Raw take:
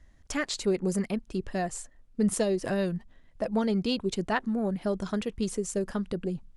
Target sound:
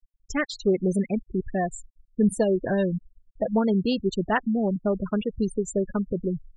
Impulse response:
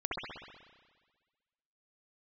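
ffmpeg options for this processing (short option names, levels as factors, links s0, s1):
-filter_complex "[0:a]afftfilt=real='re*gte(hypot(re,im),0.0355)':imag='im*gte(hypot(re,im),0.0355)':win_size=1024:overlap=0.75,acrossover=split=2400[s0][s1];[s1]alimiter=level_in=2.11:limit=0.0631:level=0:latency=1:release=116,volume=0.473[s2];[s0][s2]amix=inputs=2:normalize=0,volume=1.68"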